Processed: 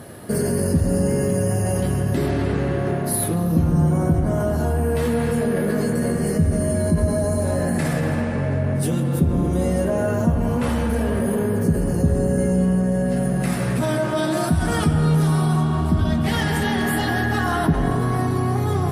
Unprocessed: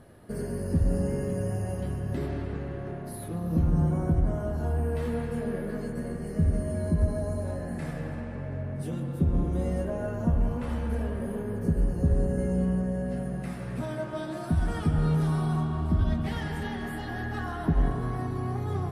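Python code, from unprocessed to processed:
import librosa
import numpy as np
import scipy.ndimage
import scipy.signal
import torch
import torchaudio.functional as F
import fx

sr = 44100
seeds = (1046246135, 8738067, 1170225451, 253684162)

p1 = scipy.signal.sosfilt(scipy.signal.butter(2, 88.0, 'highpass', fs=sr, output='sos'), x)
p2 = fx.high_shelf(p1, sr, hz=4600.0, db=8.5)
p3 = fx.over_compress(p2, sr, threshold_db=-35.0, ratio=-1.0)
p4 = p2 + (p3 * 10.0 ** (-2.0 / 20.0))
y = p4 * 10.0 ** (7.0 / 20.0)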